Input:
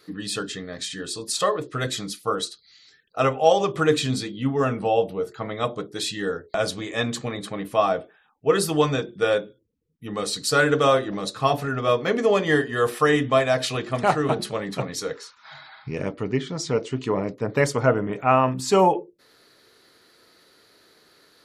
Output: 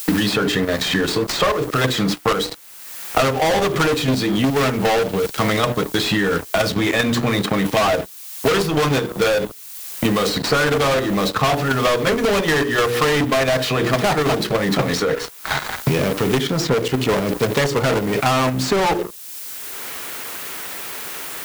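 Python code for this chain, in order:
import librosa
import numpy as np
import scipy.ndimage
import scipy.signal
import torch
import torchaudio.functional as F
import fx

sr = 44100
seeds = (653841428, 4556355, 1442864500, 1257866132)

y = scipy.ndimage.median_filter(x, 5, mode='constant')
y = fx.hum_notches(y, sr, base_hz=60, count=8)
y = fx.dynamic_eq(y, sr, hz=570.0, q=0.7, threshold_db=-37.0, ratio=4.0, max_db=-5, at=(5.14, 7.78))
y = fx.leveller(y, sr, passes=5)
y = fx.level_steps(y, sr, step_db=10)
y = 10.0 ** (-13.5 / 20.0) * np.tanh(y / 10.0 ** (-13.5 / 20.0))
y = fx.dmg_noise_colour(y, sr, seeds[0], colour='blue', level_db=-46.0)
y = fx.band_squash(y, sr, depth_pct=100)
y = F.gain(torch.from_numpy(y), -1.0).numpy()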